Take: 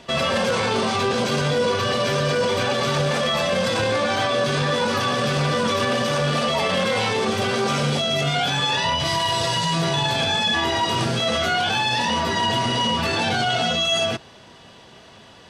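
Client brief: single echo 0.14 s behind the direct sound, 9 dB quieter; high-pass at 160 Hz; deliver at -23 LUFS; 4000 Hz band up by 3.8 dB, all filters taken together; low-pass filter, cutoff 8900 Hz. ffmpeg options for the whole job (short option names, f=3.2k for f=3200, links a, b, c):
-af "highpass=160,lowpass=8.9k,equalizer=f=4k:t=o:g=5,aecho=1:1:140:0.355,volume=-4.5dB"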